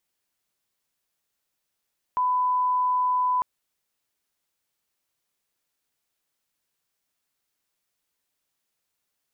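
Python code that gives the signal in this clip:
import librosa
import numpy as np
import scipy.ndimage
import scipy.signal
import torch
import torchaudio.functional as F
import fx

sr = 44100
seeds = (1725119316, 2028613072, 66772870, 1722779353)

y = fx.lineup_tone(sr, length_s=1.25, level_db=-20.0)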